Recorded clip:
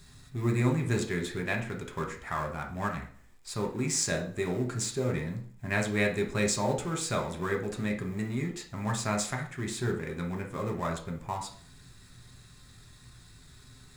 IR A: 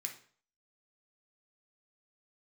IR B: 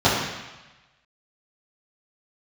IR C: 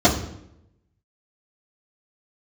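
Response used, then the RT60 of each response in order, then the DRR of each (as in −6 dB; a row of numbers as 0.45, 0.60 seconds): A; 0.50, 1.1, 0.75 seconds; 2.0, −12.0, −10.5 decibels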